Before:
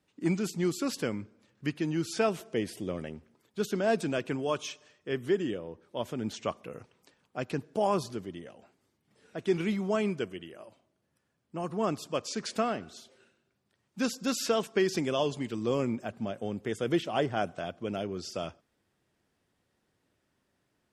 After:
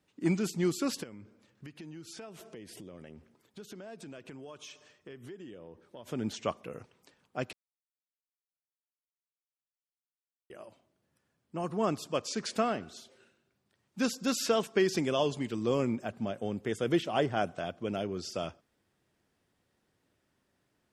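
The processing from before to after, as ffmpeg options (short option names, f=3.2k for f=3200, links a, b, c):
-filter_complex "[0:a]asplit=3[a][b][c];[a]afade=t=out:st=1.02:d=0.02[d];[b]acompressor=threshold=-44dB:ratio=6:attack=3.2:release=140:knee=1:detection=peak,afade=t=in:st=1.02:d=0.02,afade=t=out:st=6.06:d=0.02[e];[c]afade=t=in:st=6.06:d=0.02[f];[d][e][f]amix=inputs=3:normalize=0,asplit=3[g][h][i];[g]atrim=end=7.53,asetpts=PTS-STARTPTS,afade=t=out:st=7.526:d=0.004:c=hsin[j];[h]atrim=start=7.53:end=10.5,asetpts=PTS-STARTPTS,volume=0[k];[i]atrim=start=10.5,asetpts=PTS-STARTPTS,afade=t=in:d=0.004:c=hsin[l];[j][k][l]concat=n=3:v=0:a=1"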